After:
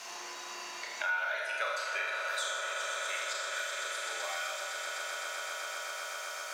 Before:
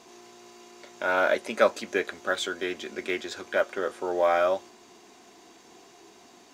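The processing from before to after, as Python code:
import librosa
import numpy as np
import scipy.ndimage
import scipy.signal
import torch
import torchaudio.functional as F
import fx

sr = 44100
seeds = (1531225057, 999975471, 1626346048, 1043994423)

p1 = fx.bin_expand(x, sr, power=1.5)
p2 = scipy.signal.sosfilt(scipy.signal.butter(12, 320.0, 'highpass', fs=sr, output='sos'), p1)
p3 = fx.tilt_eq(p2, sr, slope=4.5)
p4 = fx.dmg_noise_colour(p3, sr, seeds[0], colour='white', level_db=-64.0)
p5 = fx.filter_sweep_bandpass(p4, sr, from_hz=1200.0, to_hz=6700.0, start_s=1.59, end_s=2.46, q=0.72)
p6 = p5 + fx.echo_swell(p5, sr, ms=127, loudest=5, wet_db=-13, dry=0)
p7 = fx.rev_schroeder(p6, sr, rt60_s=0.95, comb_ms=26, drr_db=-3.0)
p8 = fx.band_squash(p7, sr, depth_pct=100)
y = F.gain(torch.from_numpy(p8), -8.0).numpy()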